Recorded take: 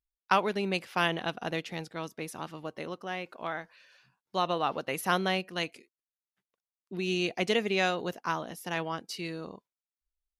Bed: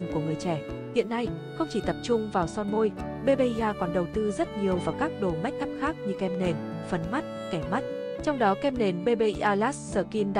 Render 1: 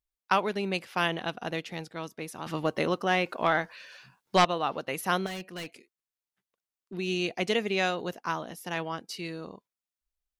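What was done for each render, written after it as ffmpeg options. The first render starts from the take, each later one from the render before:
ffmpeg -i in.wav -filter_complex "[0:a]asettb=1/sr,asplit=3[link_01][link_02][link_03];[link_01]atrim=end=2.464[link_04];[link_02]atrim=start=2.46:end=4.45,asetpts=PTS-STARTPTS,afade=type=in:duration=0.004:curve=qsin,afade=type=out:start_time=1.986:duration=0.004:curve=qsin,aeval=exprs='0.211*sin(PI/2*2.24*val(0)/0.211)':channel_layout=same[link_05];[link_03]atrim=start=4.446[link_06];[link_04][link_05]acrossfade=duration=0.004:curve1=hsin:curve2=qsin[link_07];[link_07][link_06]acrossfade=duration=0.004:curve1=qsin:curve2=hsin,asettb=1/sr,asplit=3[link_08][link_09][link_10];[link_08]atrim=end=5.264[link_11];[link_09]atrim=start=5.26:end=6.94,asetpts=PTS-STARTPTS,afade=type=in:duration=0.004:curve=qsin,afade=type=out:start_time=1.676:duration=0.004:curve=qsin,asoftclip=type=hard:threshold=-34.5dB[link_12];[link_10]atrim=start=6.936[link_13];[link_11][link_12]acrossfade=duration=0.004:curve1=hsin:curve2=qsin[link_14];[link_14][link_13]acrossfade=duration=0.004:curve1=qsin:curve2=hsin" out.wav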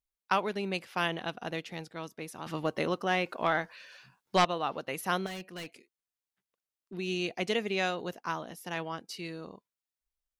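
ffmpeg -i in.wav -af "volume=-3dB" out.wav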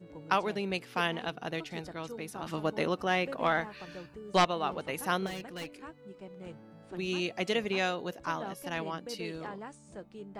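ffmpeg -i in.wav -i bed.wav -filter_complex "[1:a]volume=-18.5dB[link_01];[0:a][link_01]amix=inputs=2:normalize=0" out.wav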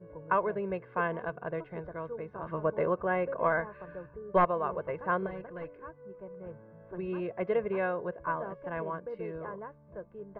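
ffmpeg -i in.wav -af "lowpass=frequency=1600:width=0.5412,lowpass=frequency=1600:width=1.3066,aecho=1:1:1.9:0.68" out.wav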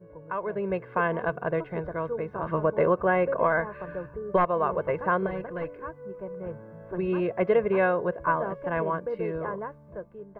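ffmpeg -i in.wav -af "alimiter=limit=-21dB:level=0:latency=1:release=223,dynaudnorm=framelen=190:gausssize=7:maxgain=8dB" out.wav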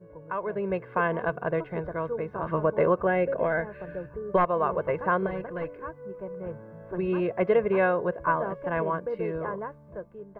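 ffmpeg -i in.wav -filter_complex "[0:a]asettb=1/sr,asplit=3[link_01][link_02][link_03];[link_01]atrim=end=3.074[link_04];[link_02]atrim=start=3.07:end=4.11,asetpts=PTS-STARTPTS,afade=type=in:duration=0.004:curve=qsin,afade=type=out:start_time=1.036:duration=0.004:curve=qsin,equalizer=frequency=1100:width_type=o:width=0.52:gain=-12[link_05];[link_03]atrim=start=4.106[link_06];[link_04][link_05]acrossfade=duration=0.004:curve1=hsin:curve2=qsin[link_07];[link_07][link_06]acrossfade=duration=0.004:curve1=qsin:curve2=hsin" out.wav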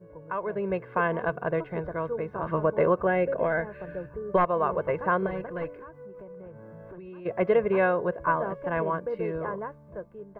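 ffmpeg -i in.wav -filter_complex "[0:a]asplit=3[link_01][link_02][link_03];[link_01]afade=type=out:start_time=5.73:duration=0.02[link_04];[link_02]acompressor=threshold=-40dB:ratio=10:attack=3.2:release=140:knee=1:detection=peak,afade=type=in:start_time=5.73:duration=0.02,afade=type=out:start_time=7.25:duration=0.02[link_05];[link_03]afade=type=in:start_time=7.25:duration=0.02[link_06];[link_04][link_05][link_06]amix=inputs=3:normalize=0" out.wav

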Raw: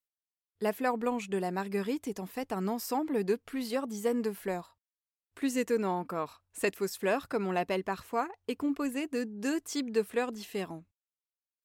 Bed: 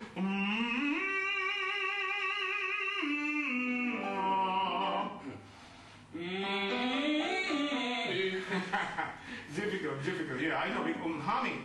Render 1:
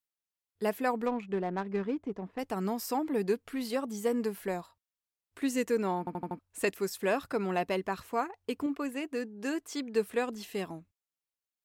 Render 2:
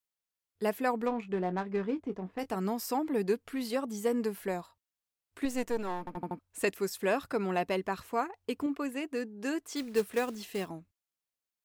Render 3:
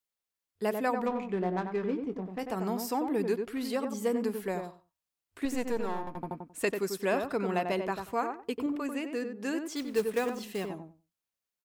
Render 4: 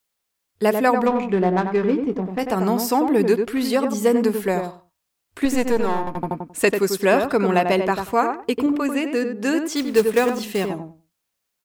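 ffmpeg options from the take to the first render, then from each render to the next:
ffmpeg -i in.wav -filter_complex "[0:a]asettb=1/sr,asplit=3[link_01][link_02][link_03];[link_01]atrim=end=1.064[link_04];[link_02]atrim=start=1.06:end=2.39,asetpts=PTS-STARTPTS,afade=type=in:duration=0.004:curve=qsin,afade=type=out:start_time=1.326:duration=0.004:curve=qsin,adynamicsmooth=sensitivity=3.5:basefreq=1200[link_05];[link_03]atrim=start=2.386[link_06];[link_04][link_05]acrossfade=duration=0.004:curve1=hsin:curve2=qsin[link_07];[link_07][link_06]acrossfade=duration=0.004:curve1=qsin:curve2=hsin,asettb=1/sr,asplit=3[link_08][link_09][link_10];[link_08]atrim=end=8.664[link_11];[link_09]atrim=start=8.66:end=9.95,asetpts=PTS-STARTPTS,afade=type=in:duration=0.004:curve=qsin,afade=type=out:start_time=1.286:duration=0.004:curve=qsin,bass=frequency=250:gain=-7,treble=frequency=4000:gain=-5[link_12];[link_10]atrim=start=9.946[link_13];[link_11][link_12]acrossfade=duration=0.004:curve1=hsin:curve2=qsin[link_14];[link_14][link_13]acrossfade=duration=0.004:curve1=qsin:curve2=hsin,asplit=6[link_15][link_16][link_17][link_18][link_19][link_20];[link_15]atrim=end=6.072[link_21];[link_16]atrim=start=5.988:end=6.072[link_22];[link_17]atrim=start=5.988:end=6.072[link_23];[link_18]atrim=start=5.988:end=6.072[link_24];[link_19]atrim=start=5.988:end=6.072[link_25];[link_20]atrim=start=6.388[link_26];[link_21][link_22]acrossfade=duration=0.004:curve1=hsin:curve2=hsin[link_27];[link_27][link_23]acrossfade=duration=0.004:curve1=hsin:curve2=hsin[link_28];[link_28][link_24]acrossfade=duration=0.004:curve1=hsin:curve2=hsin[link_29];[link_29][link_25]acrossfade=duration=0.004:curve1=hsin:curve2=hsin[link_30];[link_30][link_26]acrossfade=duration=0.004:curve1=hsin:curve2=hsin" out.wav
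ffmpeg -i in.wav -filter_complex "[0:a]asettb=1/sr,asplit=3[link_01][link_02][link_03];[link_01]atrim=end=1.084[link_04];[link_02]atrim=start=1.08:end=2.56,asetpts=PTS-STARTPTS,afade=type=in:duration=0.004:curve=qsin,afade=type=out:start_time=1.476:duration=0.004:curve=qsin,asplit=2[link_05][link_06];[link_06]adelay=22,volume=-11.5dB[link_07];[link_05][link_07]amix=inputs=2:normalize=0,atrim=end_sample=65268[link_08];[link_03]atrim=start=2.556[link_09];[link_04][link_08]acrossfade=duration=0.004:curve1=hsin:curve2=qsin[link_10];[link_10][link_09]acrossfade=duration=0.004:curve1=qsin:curve2=hsin,asettb=1/sr,asplit=3[link_11][link_12][link_13];[link_11]atrim=end=5.454[link_14];[link_12]atrim=start=5.45:end=6.17,asetpts=PTS-STARTPTS,afade=type=in:duration=0.004:curve=qsin,afade=type=out:start_time=0.716:duration=0.004:curve=qsin,aeval=exprs='if(lt(val(0),0),0.251*val(0),val(0))':channel_layout=same[link_15];[link_13]atrim=start=6.166[link_16];[link_14][link_15]acrossfade=duration=0.004:curve1=hsin:curve2=qsin[link_17];[link_17][link_16]acrossfade=duration=0.004:curve1=qsin:curve2=hsin,asettb=1/sr,asplit=3[link_18][link_19][link_20];[link_18]atrim=end=9.764[link_21];[link_19]atrim=start=9.76:end=10.69,asetpts=PTS-STARTPTS,afade=type=in:duration=0.004:curve=qsin,afade=type=out:start_time=0.926:duration=0.004:curve=qsin,acrusher=bits=4:mode=log:mix=0:aa=0.000001[link_22];[link_20]atrim=start=10.686[link_23];[link_21][link_22]acrossfade=duration=0.004:curve1=hsin:curve2=qsin[link_24];[link_24][link_23]acrossfade=duration=0.004:curve1=qsin:curve2=hsin" out.wav
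ffmpeg -i in.wav -filter_complex "[0:a]asplit=2[link_01][link_02];[link_02]adelay=93,lowpass=frequency=1400:poles=1,volume=-5dB,asplit=2[link_03][link_04];[link_04]adelay=93,lowpass=frequency=1400:poles=1,volume=0.18,asplit=2[link_05][link_06];[link_06]adelay=93,lowpass=frequency=1400:poles=1,volume=0.18[link_07];[link_01][link_03][link_05][link_07]amix=inputs=4:normalize=0" out.wav
ffmpeg -i in.wav -af "volume=12dB" out.wav

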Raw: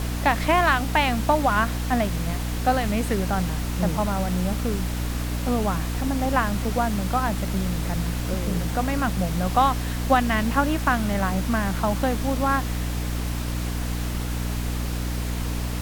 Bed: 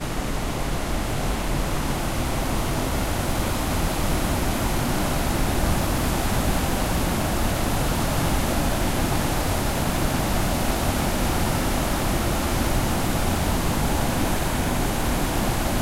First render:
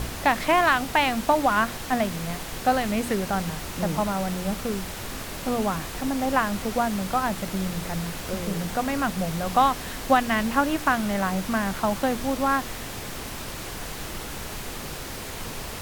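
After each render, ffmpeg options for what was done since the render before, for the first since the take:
ffmpeg -i in.wav -af "bandreject=frequency=60:width_type=h:width=4,bandreject=frequency=120:width_type=h:width=4,bandreject=frequency=180:width_type=h:width=4,bandreject=frequency=240:width_type=h:width=4,bandreject=frequency=300:width_type=h:width=4" out.wav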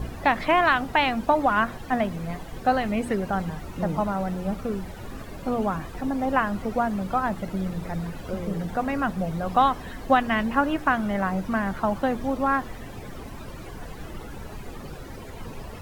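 ffmpeg -i in.wav -af "afftdn=noise_reduction=15:noise_floor=-35" out.wav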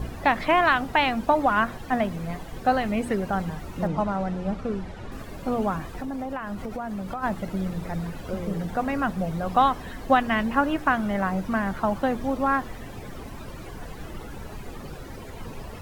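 ffmpeg -i in.wav -filter_complex "[0:a]asettb=1/sr,asplit=3[link_01][link_02][link_03];[link_01]atrim=end=3.874[link_04];[link_02]atrim=start=3.87:end=5.12,asetpts=PTS-STARTPTS,afade=type=in:duration=0.004:curve=qsin,afade=type=out:start_time=1.246:duration=0.004:curve=qsin,adynamicsmooth=sensitivity=6:basefreq=6200[link_05];[link_03]atrim=start=5.116[link_06];[link_04][link_05]acrossfade=duration=0.004:curve1=hsin:curve2=qsin[link_07];[link_07][link_06]acrossfade=duration=0.004:curve1=qsin:curve2=hsin,asplit=3[link_08][link_09][link_10];[link_08]afade=type=out:start_time=5.96:duration=0.02[link_11];[link_09]acompressor=threshold=-28dB:ratio=6:attack=3.2:release=140:knee=1:detection=peak,afade=type=in:start_time=5.96:duration=0.02,afade=type=out:start_time=7.22:duration=0.02[link_12];[link_10]afade=type=in:start_time=7.22:duration=0.02[link_13];[link_11][link_12][link_13]amix=inputs=3:normalize=0" out.wav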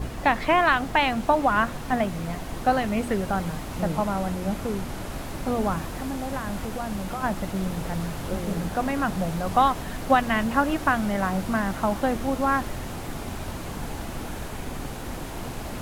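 ffmpeg -i in.wav -i bed.wav -filter_complex "[1:a]volume=-12.5dB[link_01];[0:a][link_01]amix=inputs=2:normalize=0" out.wav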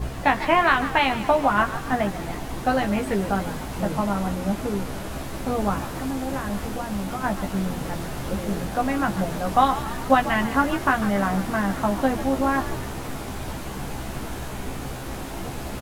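ffmpeg -i in.wav -filter_complex "[0:a]asplit=2[link_01][link_02];[link_02]adelay=15,volume=-4.5dB[link_03];[link_01][link_03]amix=inputs=2:normalize=0,asplit=7[link_04][link_05][link_06][link_07][link_08][link_09][link_10];[link_05]adelay=144,afreqshift=60,volume=-13.5dB[link_11];[link_06]adelay=288,afreqshift=120,volume=-18.5dB[link_12];[link_07]adelay=432,afreqshift=180,volume=-23.6dB[link_13];[link_08]adelay=576,afreqshift=240,volume=-28.6dB[link_14];[link_09]adelay=720,afreqshift=300,volume=-33.6dB[link_15];[link_10]adelay=864,afreqshift=360,volume=-38.7dB[link_16];[link_04][link_11][link_12][link_13][link_14][link_15][link_16]amix=inputs=7:normalize=0" out.wav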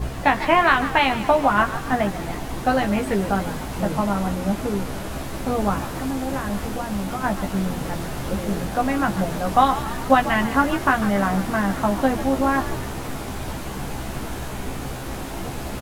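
ffmpeg -i in.wav -af "volume=2dB,alimiter=limit=-3dB:level=0:latency=1" out.wav

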